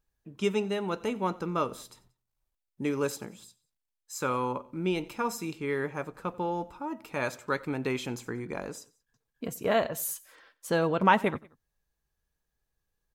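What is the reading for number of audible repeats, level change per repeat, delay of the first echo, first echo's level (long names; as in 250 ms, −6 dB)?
2, −5.5 dB, 91 ms, −22.5 dB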